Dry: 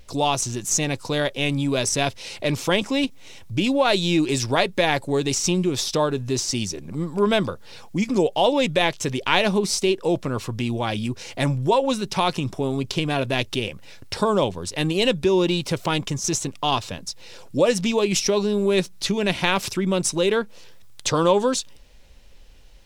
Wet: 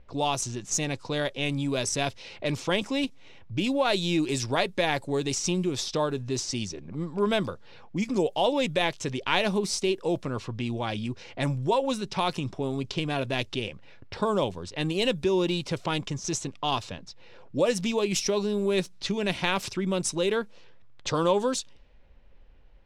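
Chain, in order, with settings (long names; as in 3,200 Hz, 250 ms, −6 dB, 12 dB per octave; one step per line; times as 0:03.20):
low-pass that shuts in the quiet parts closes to 1,700 Hz, open at −17.5 dBFS
level −5.5 dB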